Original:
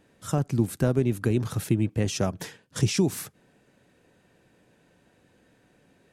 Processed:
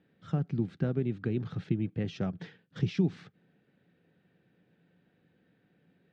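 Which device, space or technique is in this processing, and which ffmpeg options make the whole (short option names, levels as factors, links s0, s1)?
guitar cabinet: -af "highpass=85,equalizer=f=170:t=q:w=4:g=9,equalizer=f=610:t=q:w=4:g=-5,equalizer=f=1000:t=q:w=4:g=-9,equalizer=f=2600:t=q:w=4:g=-3,lowpass=f=3700:w=0.5412,lowpass=f=3700:w=1.3066,volume=0.422"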